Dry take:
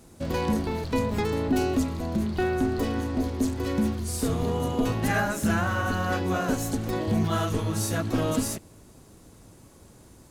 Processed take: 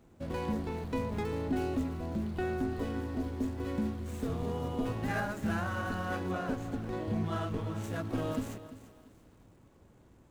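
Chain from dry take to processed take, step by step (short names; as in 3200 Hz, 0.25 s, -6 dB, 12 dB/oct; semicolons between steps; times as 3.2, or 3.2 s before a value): median filter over 9 samples; 6.31–7.84 high shelf 7800 Hz -9 dB; lo-fi delay 0.342 s, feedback 35%, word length 8-bit, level -14 dB; gain -8 dB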